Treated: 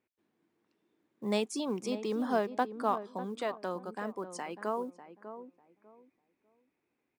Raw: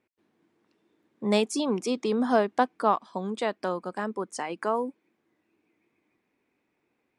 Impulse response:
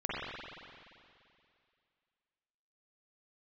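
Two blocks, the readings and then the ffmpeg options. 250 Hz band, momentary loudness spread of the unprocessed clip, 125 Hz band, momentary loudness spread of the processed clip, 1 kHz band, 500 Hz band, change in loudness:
−6.5 dB, 10 LU, −6.5 dB, 15 LU, −7.0 dB, −6.5 dB, −6.5 dB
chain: -filter_complex "[0:a]acrusher=bits=9:mode=log:mix=0:aa=0.000001,asplit=2[link_01][link_02];[link_02]adelay=597,lowpass=frequency=990:poles=1,volume=-10dB,asplit=2[link_03][link_04];[link_04]adelay=597,lowpass=frequency=990:poles=1,volume=0.25,asplit=2[link_05][link_06];[link_06]adelay=597,lowpass=frequency=990:poles=1,volume=0.25[link_07];[link_01][link_03][link_05][link_07]amix=inputs=4:normalize=0,volume=-7dB"

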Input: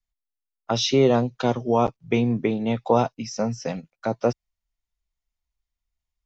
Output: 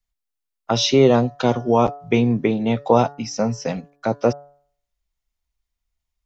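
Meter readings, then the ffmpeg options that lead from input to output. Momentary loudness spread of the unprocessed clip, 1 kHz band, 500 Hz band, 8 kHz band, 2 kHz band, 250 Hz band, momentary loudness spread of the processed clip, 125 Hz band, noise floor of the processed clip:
11 LU, +3.5 dB, +4.0 dB, can't be measured, +4.0 dB, +4.0 dB, 11 LU, +4.0 dB, −81 dBFS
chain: -af "bandreject=frequency=143.1:width_type=h:width=4,bandreject=frequency=286.2:width_type=h:width=4,bandreject=frequency=429.3:width_type=h:width=4,bandreject=frequency=572.4:width_type=h:width=4,bandreject=frequency=715.5:width_type=h:width=4,bandreject=frequency=858.6:width_type=h:width=4,bandreject=frequency=1001.7:width_type=h:width=4,bandreject=frequency=1144.8:width_type=h:width=4,bandreject=frequency=1287.9:width_type=h:width=4,bandreject=frequency=1431:width_type=h:width=4,bandreject=frequency=1574.1:width_type=h:width=4,bandreject=frequency=1717.2:width_type=h:width=4,bandreject=frequency=1860.3:width_type=h:width=4,volume=4dB"

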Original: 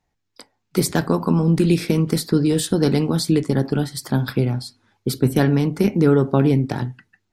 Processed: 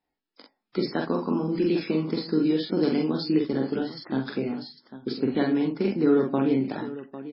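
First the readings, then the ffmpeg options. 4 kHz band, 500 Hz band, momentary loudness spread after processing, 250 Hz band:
−7.0 dB, −5.0 dB, 11 LU, −5.0 dB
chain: -af "lowshelf=frequency=170:width_type=q:width=1.5:gain=-11,aecho=1:1:45|801:0.708|0.211,volume=-8dB" -ar 12000 -c:a libmp3lame -b:a 16k

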